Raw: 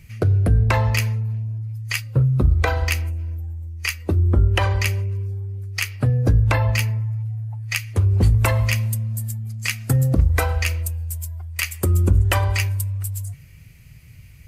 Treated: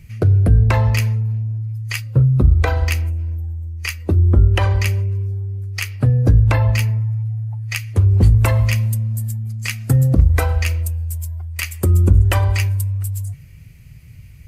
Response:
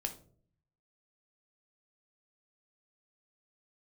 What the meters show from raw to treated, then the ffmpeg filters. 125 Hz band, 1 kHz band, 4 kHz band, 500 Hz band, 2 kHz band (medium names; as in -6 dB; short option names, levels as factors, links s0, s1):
+4.0 dB, 0.0 dB, -1.0 dB, +1.5 dB, -1.0 dB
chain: -af "lowshelf=f=430:g=5.5,volume=0.891"